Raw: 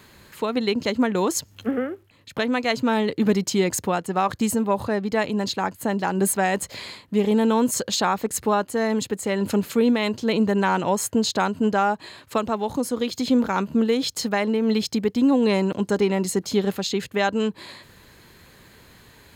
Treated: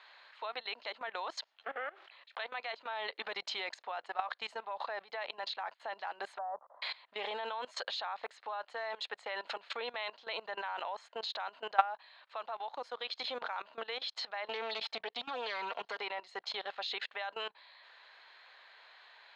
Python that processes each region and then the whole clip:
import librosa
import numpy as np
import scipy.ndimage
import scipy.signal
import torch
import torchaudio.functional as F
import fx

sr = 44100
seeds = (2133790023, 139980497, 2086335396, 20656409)

y = fx.chain(x, sr, fx.low_shelf(hz=360.0, db=-5.0),
    fx.sustainer(db_per_s=64.0), at=(1.78, 2.54))
y = fx.chain(y, sr, fx.ellip_lowpass(hz=1200.0, order=4, stop_db=50),
    fx.peak_eq(hz=390.0, db=-7.0, octaves=0.56), at=(6.38, 6.82))
y = fx.chain(y, sr, fx.self_delay(depth_ms=0.12),
    fx.comb(ms=4.4, depth=0.52),
    fx.band_squash(depth_pct=70), at=(14.49, 15.99))
y = scipy.signal.sosfilt(scipy.signal.cheby1(3, 1.0, [680.0, 4000.0], 'bandpass', fs=sr, output='sos'), y)
y = fx.level_steps(y, sr, step_db=20)
y = y * 10.0 ** (1.5 / 20.0)